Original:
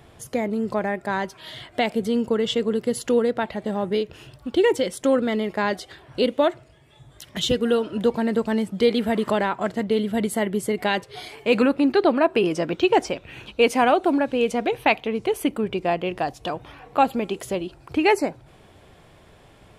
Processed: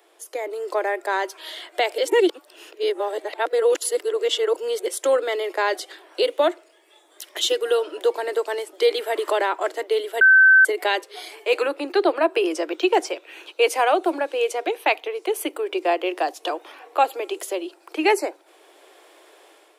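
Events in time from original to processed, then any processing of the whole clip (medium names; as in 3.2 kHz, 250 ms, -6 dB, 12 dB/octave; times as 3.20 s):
1.98–4.86 s: reverse
10.21–10.65 s: bleep 1.54 kHz -10.5 dBFS
whole clip: steep high-pass 310 Hz 96 dB/octave; treble shelf 6.8 kHz +7.5 dB; level rider gain up to 8 dB; trim -5.5 dB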